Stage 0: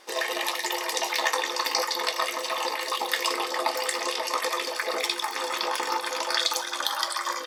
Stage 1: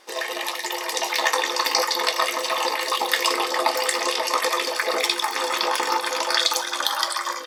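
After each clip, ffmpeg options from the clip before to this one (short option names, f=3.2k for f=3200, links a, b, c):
-af "dynaudnorm=f=710:g=3:m=6dB"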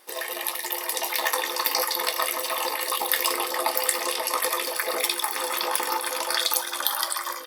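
-af "aexciter=amount=6.5:drive=2.6:freq=9.2k,volume=-4.5dB"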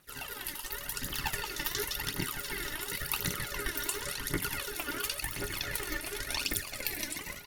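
-af "aeval=exprs='val(0)*sin(2*PI*920*n/s)':c=same,aphaser=in_gain=1:out_gain=1:delay=3.5:decay=0.61:speed=0.92:type=triangular,volume=-8.5dB"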